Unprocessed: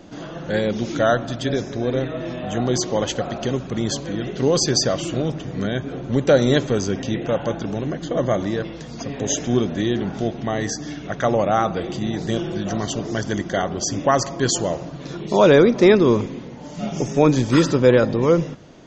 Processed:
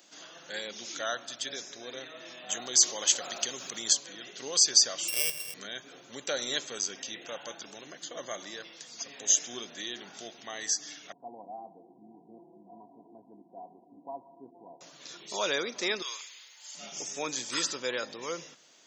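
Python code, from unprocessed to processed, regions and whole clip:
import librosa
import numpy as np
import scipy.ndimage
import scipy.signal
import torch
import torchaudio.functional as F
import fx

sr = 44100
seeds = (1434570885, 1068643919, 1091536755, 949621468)

y = fx.chain(x, sr, fx.high_shelf(hz=6300.0, db=7.5),
    fx.env_flatten(amount_pct=50), at=(2.49, 3.93))
y = fx.chain(y, sr, fx.sample_sort(block=16),
    fx.comb(ms=1.8, depth=0.72), at=(5.08, 5.54))
y = fx.chain(y, sr, fx.cheby_ripple(hz=1000.0, ripple_db=9),
    fx.notch_comb(f0_hz=600.0), at=(11.12, 14.81))
y = fx.chain(y, sr, fx.highpass(hz=1300.0, slope=12),
    fx.high_shelf(hz=2700.0, db=7.5),
    fx.notch(hz=5800.0, q=6.2), at=(16.02, 16.75))
y = scipy.signal.sosfilt(scipy.signal.butter(2, 140.0, 'highpass', fs=sr, output='sos'), y)
y = np.diff(y, prepend=0.0)
y = y * librosa.db_to_amplitude(2.5)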